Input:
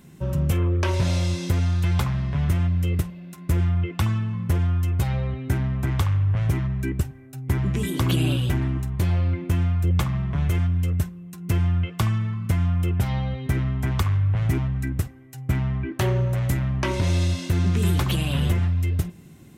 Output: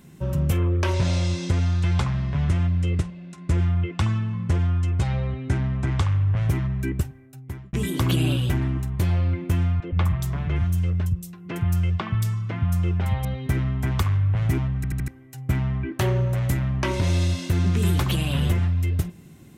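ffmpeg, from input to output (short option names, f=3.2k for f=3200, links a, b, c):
-filter_complex "[0:a]asettb=1/sr,asplit=3[a][b][c];[a]atrim=end=0.934[d];[b]atrim=start=0.93:end=6.38,asetpts=PTS-STARTPTS,afade=t=in:d=0.004:c=qsin,afade=t=out:st=5.446:d=0.004:c=qsin,lowpass=f=8.4k:w=0.5412,lowpass=f=8.4k:w=1.3066[e];[c]atrim=start=6.376[f];[d][e]acrossfade=d=0.004:c1=hsin:c2=qsin[g];[g][f]acrossfade=d=0.004:c1=qsin:c2=hsin,asettb=1/sr,asplit=3[h][i][j];[h]atrim=end=9.804[k];[i]atrim=start=9.8:end=13.25,asetpts=PTS-STARTPTS,afade=t=in:d=0.004:c=qsin,afade=t=out:st=3.446:d=0.004:c=qsin,acrossover=split=200|3900[l][m][n];[l]adelay=120[o];[n]adelay=230[p];[o][m][p]amix=inputs=3:normalize=0,atrim=end_sample=152145[q];[j]atrim=start=13.246[r];[k][q]acrossfade=d=0.004:c1=hsin:c2=qsin[s];[s][r]acrossfade=d=0.004:c1=qsin:c2=hsin,asplit=6[t][u][v][w][x][y];[t]atrim=end=7.73,asetpts=PTS-STARTPTS,afade=t=out:st=6.96:d=0.77[z];[u]atrim=start=7.73:end=14.842,asetpts=PTS-STARTPTS,afade=t=in:d=0.004:c=hsin[aa];[v]atrim=start=14.758:end=14.842[ab];[w]atrim=start=14.758:end=14.842[ac];[x]atrim=start=14.758:end=14.842[ad];[y]atrim=start=15.078[ae];[z][aa]concat=n=2:v=0:a=1[af];[af][ab]acrossfade=d=0.004:c1=hsin:c2=hsin[ag];[ag][ac]acrossfade=d=0.004:c1=hsin:c2=hsin[ah];[ah][ad]acrossfade=d=0.004:c1=hsin:c2=hsin[ai];[ai][ae]acrossfade=d=0.004:c1=hsin:c2=hsin"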